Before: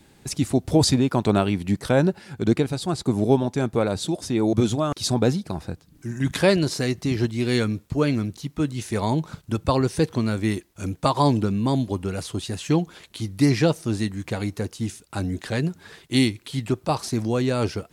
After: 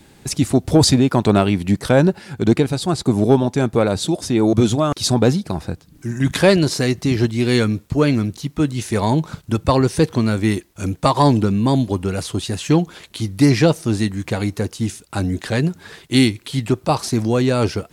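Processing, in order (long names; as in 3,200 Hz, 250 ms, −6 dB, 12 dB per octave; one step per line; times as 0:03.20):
soft clipping −7 dBFS, distortion −26 dB
level +6 dB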